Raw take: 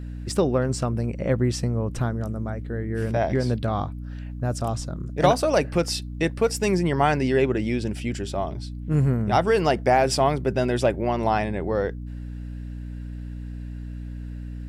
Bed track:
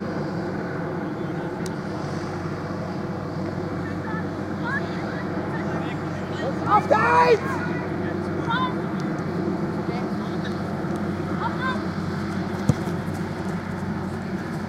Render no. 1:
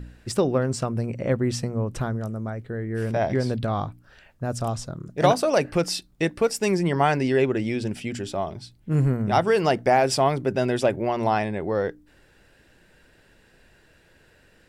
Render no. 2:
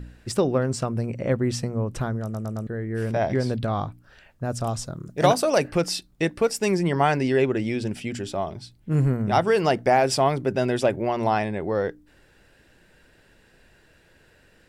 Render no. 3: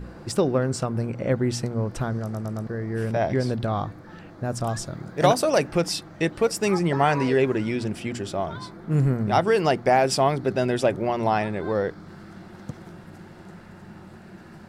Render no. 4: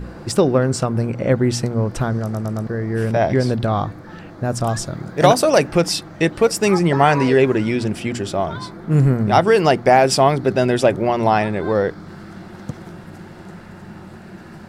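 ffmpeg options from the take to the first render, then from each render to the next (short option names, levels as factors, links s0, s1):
-af "bandreject=f=60:t=h:w=4,bandreject=f=120:t=h:w=4,bandreject=f=180:t=h:w=4,bandreject=f=240:t=h:w=4,bandreject=f=300:t=h:w=4"
-filter_complex "[0:a]asettb=1/sr,asplit=3[s0][s1][s2];[s0]atrim=end=4.684[s3];[s1]atrim=start=4.68:end=5.68,asetpts=PTS-STARTPTS,afade=t=in:d=0.004:c=qsin,afade=t=out:st=0.996:d=0.004:c=qsin,highshelf=f=6600:g=6.5[s4];[s2]atrim=start=5.676[s5];[s3][s4]acrossfade=d=0.004:c1=hsin:c2=qsin[s6];[s6][s5]acrossfade=d=0.004:c1=qsin:c2=hsin,asplit=5[s7][s8][s9][s10][s11];[s7]atrim=end=2.342[s12];[s8]atrim=start=2.228:end=2.342[s13];[s9]atrim=start=2.228:end=2.342[s14];[s10]atrim=start=2.228:end=2.342[s15];[s11]atrim=start=2.668[s16];[s12][s13]acrossfade=d=0.004:c1=hsin:c2=hsin[s17];[s17][s14]acrossfade=d=0.004:c1=hsin:c2=hsin[s18];[s18][s15]acrossfade=d=0.004:c1=hsin:c2=hsin[s19];[s19][s16]acrossfade=d=0.004:c1=hsin:c2=hsin"
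-filter_complex "[1:a]volume=0.158[s0];[0:a][s0]amix=inputs=2:normalize=0"
-af "volume=2.11,alimiter=limit=0.891:level=0:latency=1"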